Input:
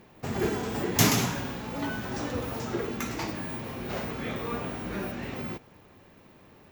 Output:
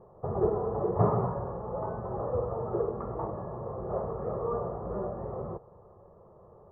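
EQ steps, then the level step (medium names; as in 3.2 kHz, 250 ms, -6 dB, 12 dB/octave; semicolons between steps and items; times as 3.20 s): rippled Chebyshev low-pass 1.7 kHz, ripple 6 dB; static phaser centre 660 Hz, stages 4; +8.0 dB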